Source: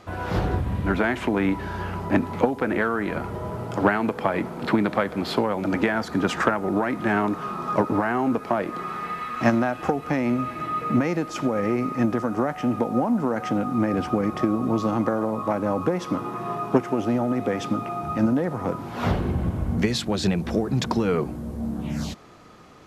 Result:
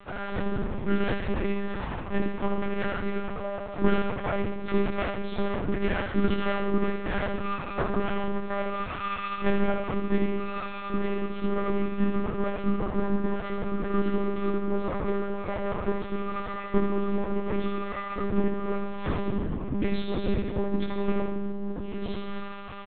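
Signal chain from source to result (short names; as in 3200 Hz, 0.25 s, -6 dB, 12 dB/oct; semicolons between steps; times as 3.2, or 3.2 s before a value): minimum comb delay 3.4 ms; dynamic EQ 290 Hz, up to +7 dB, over -39 dBFS, Q 3; reverse; upward compressor, threshold -21 dBFS; reverse; flange 0.28 Hz, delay 10 ms, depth 2.5 ms, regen -38%; doubler 21 ms -3 dB; on a send: flutter echo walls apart 11.8 m, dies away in 0.67 s; on the sum: digital reverb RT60 0.4 s, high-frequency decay 0.65×, pre-delay 40 ms, DRR 7 dB; monotone LPC vocoder at 8 kHz 200 Hz; gain -4 dB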